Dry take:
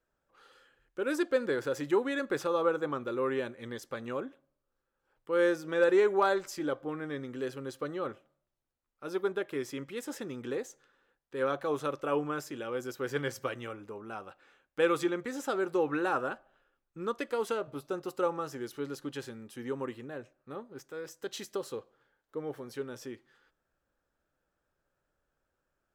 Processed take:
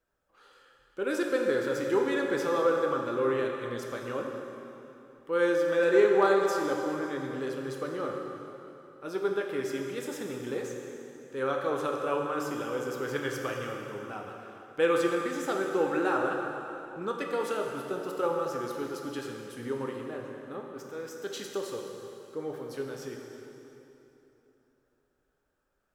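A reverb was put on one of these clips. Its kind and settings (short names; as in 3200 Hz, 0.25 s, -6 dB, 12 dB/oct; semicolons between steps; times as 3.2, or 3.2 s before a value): plate-style reverb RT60 3.2 s, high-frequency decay 0.8×, DRR 0.5 dB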